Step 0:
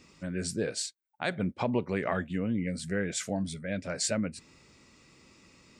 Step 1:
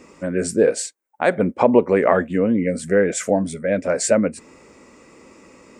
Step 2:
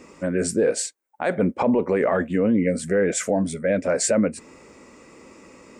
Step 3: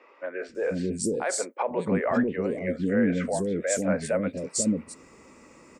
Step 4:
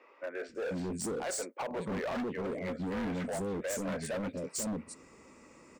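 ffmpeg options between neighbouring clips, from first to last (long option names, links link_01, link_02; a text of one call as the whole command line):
ffmpeg -i in.wav -af "equalizer=frequency=125:width_type=o:width=1:gain=-5,equalizer=frequency=250:width_type=o:width=1:gain=6,equalizer=frequency=500:width_type=o:width=1:gain=11,equalizer=frequency=1000:width_type=o:width=1:gain=6,equalizer=frequency=2000:width_type=o:width=1:gain=4,equalizer=frequency=4000:width_type=o:width=1:gain=-8,equalizer=frequency=8000:width_type=o:width=1:gain=5,volume=5.5dB" out.wav
ffmpeg -i in.wav -af "alimiter=limit=-12dB:level=0:latency=1:release=13" out.wav
ffmpeg -i in.wav -filter_complex "[0:a]acrossover=split=440|3400[link_01][link_02][link_03];[link_01]adelay=490[link_04];[link_03]adelay=550[link_05];[link_04][link_02][link_05]amix=inputs=3:normalize=0,volume=-3dB" out.wav
ffmpeg -i in.wav -af "asoftclip=type=hard:threshold=-28dB,volume=-4.5dB" out.wav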